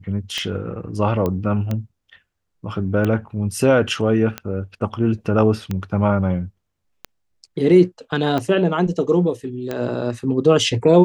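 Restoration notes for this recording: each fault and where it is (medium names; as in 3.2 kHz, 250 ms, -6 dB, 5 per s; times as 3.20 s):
tick 45 rpm -11 dBFS
1.26 s: pop -11 dBFS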